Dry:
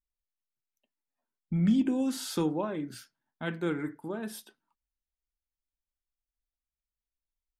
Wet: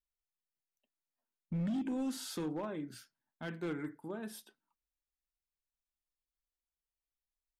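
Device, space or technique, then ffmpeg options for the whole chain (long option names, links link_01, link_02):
limiter into clipper: -af "alimiter=limit=-21.5dB:level=0:latency=1:release=47,asoftclip=type=hard:threshold=-25.5dB,volume=-6dB"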